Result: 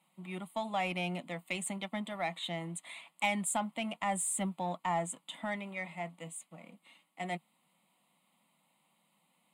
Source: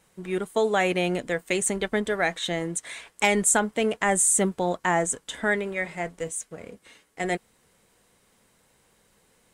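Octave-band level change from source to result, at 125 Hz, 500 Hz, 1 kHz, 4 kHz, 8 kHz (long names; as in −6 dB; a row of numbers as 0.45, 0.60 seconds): −8.0, −14.5, −7.5, −8.5, −14.0 decibels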